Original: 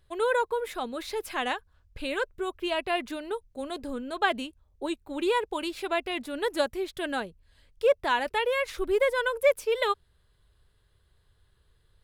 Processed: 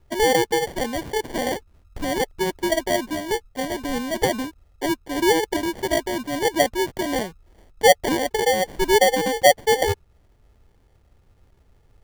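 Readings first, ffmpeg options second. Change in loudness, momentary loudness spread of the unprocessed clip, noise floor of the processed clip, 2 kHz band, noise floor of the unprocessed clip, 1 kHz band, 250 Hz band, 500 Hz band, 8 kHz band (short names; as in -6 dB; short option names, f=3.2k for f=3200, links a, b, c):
+7.0 dB, 11 LU, -58 dBFS, +5.0 dB, -67 dBFS, +7.5 dB, +9.0 dB, +6.5 dB, +17.5 dB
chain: -filter_complex "[0:a]acrossover=split=420|940[a][b][c];[c]acompressor=threshold=-42dB:ratio=6[d];[a][b][d]amix=inputs=3:normalize=0,acrusher=samples=34:mix=1:aa=0.000001,volume=8.5dB"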